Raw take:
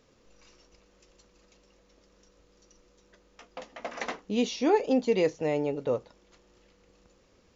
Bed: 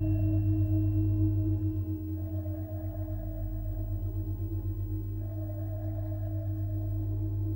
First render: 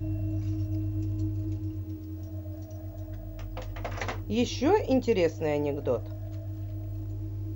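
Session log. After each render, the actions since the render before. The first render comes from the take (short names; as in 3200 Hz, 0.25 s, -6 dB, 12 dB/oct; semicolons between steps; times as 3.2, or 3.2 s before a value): add bed -3.5 dB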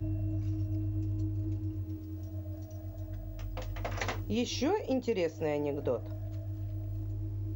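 compressor 5:1, threshold -29 dBFS, peak gain reduction 11 dB; three-band expander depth 40%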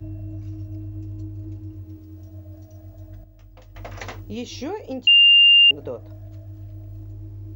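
3.24–3.75 gain -8 dB; 5.07–5.71 bleep 2800 Hz -9 dBFS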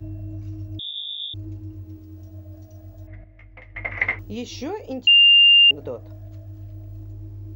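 0.79–1.34 inverted band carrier 3600 Hz; 3.07–4.19 synth low-pass 2100 Hz, resonance Q 14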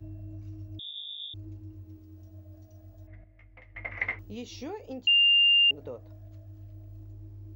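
gain -8.5 dB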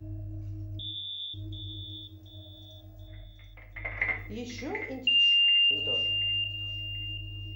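thin delay 0.733 s, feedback 36%, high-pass 1900 Hz, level -6 dB; shoebox room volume 80 m³, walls mixed, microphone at 0.47 m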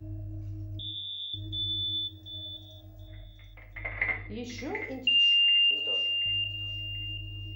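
1.33–2.57 small resonant body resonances 1800/3500 Hz, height 13 dB; 3.84–4.44 brick-wall FIR low-pass 4900 Hz; 5.19–6.26 HPF 550 Hz 6 dB/oct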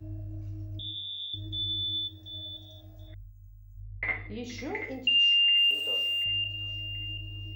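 3.14–4.03 brick-wall FIR band-stop 170–6200 Hz; 5.57–6.24 level-crossing sampler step -44.5 dBFS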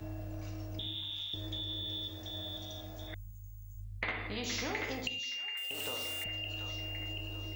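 compressor 10:1, threshold -31 dBFS, peak gain reduction 10.5 dB; spectral compressor 2:1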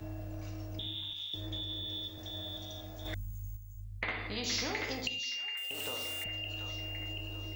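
1.13–2.18 three-band expander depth 70%; 3.05–3.57 sample leveller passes 2; 4.11–5.56 bell 4800 Hz +7.5 dB 0.6 oct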